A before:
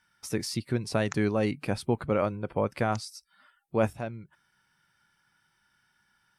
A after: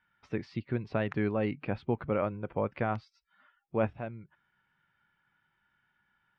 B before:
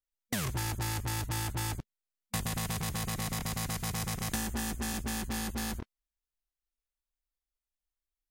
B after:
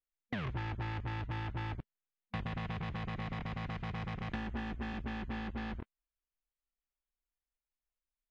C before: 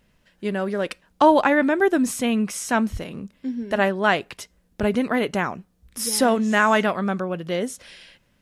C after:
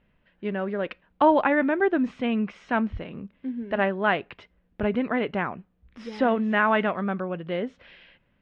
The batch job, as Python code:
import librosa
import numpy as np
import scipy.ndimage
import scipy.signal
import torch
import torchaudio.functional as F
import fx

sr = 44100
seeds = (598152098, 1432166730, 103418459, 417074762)

y = scipy.signal.sosfilt(scipy.signal.butter(4, 3000.0, 'lowpass', fs=sr, output='sos'), x)
y = F.gain(torch.from_numpy(y), -3.5).numpy()